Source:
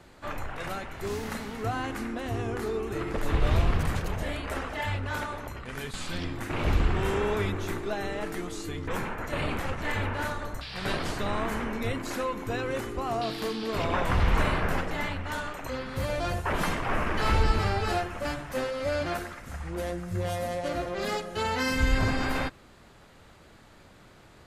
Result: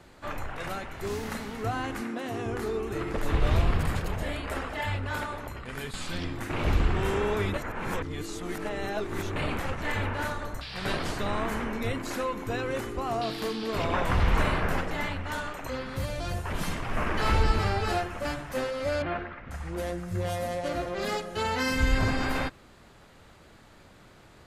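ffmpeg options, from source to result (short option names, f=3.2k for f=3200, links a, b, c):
-filter_complex "[0:a]asettb=1/sr,asplit=3[a][b][c];[a]atrim=end=2.014[d];[b]atrim=start=2.01:end=2.46,asetpts=PTS-STARTPTS,afade=t=in:d=0.004:c=qsin,afade=t=out:st=0.446:d=0.004:c=qsin,highpass=f=130:w=0.5412,highpass=f=130:w=1.3066[e];[c]atrim=start=2.456[f];[d][e]acrossfade=d=0.004:c1=hsin:c2=qsin[g];[g][f]acrossfade=d=0.004:c1=qsin:c2=hsin,asettb=1/sr,asplit=3[h][i][j];[h]atrim=end=3.614[k];[i]atrim=start=3.61:end=6.02,asetpts=PTS-STARTPTS,afade=t=in:d=0.004:c=qsin,afade=t=out:st=2.406:d=0.004:c=qsin,bandreject=f=6k:w=12[l];[j]atrim=start=6.016[m];[k][l]acrossfade=d=0.004:c1=hsin:c2=qsin[n];[n][m]acrossfade=d=0.004:c1=qsin:c2=hsin,asettb=1/sr,asplit=3[o][p][q];[o]atrim=end=15.964[r];[p]atrim=start=15.96:end=16.97,asetpts=PTS-STARTPTS,afade=t=in:d=0.004:c=qsin,afade=t=out:st=1.006:d=0.004:c=qsin,acrossover=split=230|3000[s][t][u];[t]acompressor=threshold=-34dB:ratio=6:attack=3.2:release=140:knee=2.83:detection=peak[v];[s][v][u]amix=inputs=3:normalize=0[w];[q]atrim=start=16.966[x];[r][w]acrossfade=d=0.004:c1=hsin:c2=qsin[y];[y][x]acrossfade=d=0.004:c1=qsin:c2=hsin,asettb=1/sr,asplit=3[z][aa][ab];[z]atrim=end=19.024[ac];[aa]atrim=start=19.02:end=19.51,asetpts=PTS-STARTPTS,afade=t=in:d=0.004:c=qsin,afade=t=out:st=0.486:d=0.004:c=qsin,lowpass=f=2.9k:w=0.5412,lowpass=f=2.9k:w=1.3066[ad];[ab]atrim=start=19.506[ae];[ac][ad]acrossfade=d=0.004:c1=hsin:c2=qsin[af];[af][ae]acrossfade=d=0.004:c1=qsin:c2=hsin,asplit=3[ag][ah][ai];[ag]atrim=end=7.542[aj];[ah]atrim=start=7.538:end=9.362,asetpts=PTS-STARTPTS,areverse[ak];[ai]atrim=start=9.358[al];[aj][ak]acrossfade=d=0.004:c1=hsin:c2=hsin[am];[am][al]acrossfade=d=0.004:c1=hsin:c2=hsin"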